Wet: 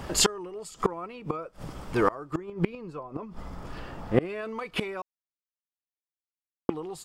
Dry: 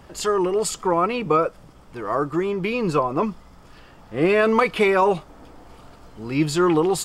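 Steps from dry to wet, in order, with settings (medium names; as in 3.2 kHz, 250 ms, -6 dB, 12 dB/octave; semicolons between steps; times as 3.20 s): 2.36–4.21 s: treble shelf 2.1 kHz -8 dB; 5.02–6.69 s: mute; inverted gate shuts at -17 dBFS, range -26 dB; trim +8.5 dB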